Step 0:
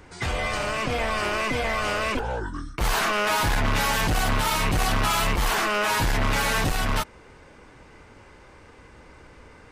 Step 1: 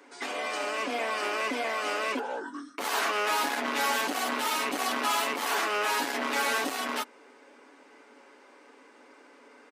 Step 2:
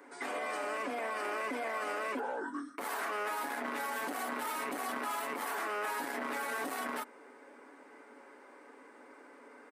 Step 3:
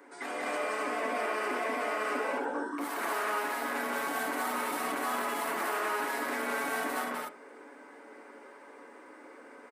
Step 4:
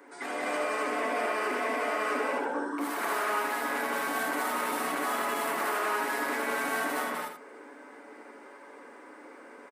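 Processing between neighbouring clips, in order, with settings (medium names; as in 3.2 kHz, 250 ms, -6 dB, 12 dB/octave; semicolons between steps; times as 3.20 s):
elliptic high-pass 240 Hz, stop band 50 dB; comb 7.1 ms, depth 39%; trim -4 dB
high-order bell 4.2 kHz -8.5 dB; peak limiter -28.5 dBFS, peak gain reduction 11 dB
loudspeakers at several distances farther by 62 m -1 dB, 86 m -2 dB; on a send at -10 dB: reverberation RT60 0.40 s, pre-delay 3 ms
delay 80 ms -7.5 dB; trim +1.5 dB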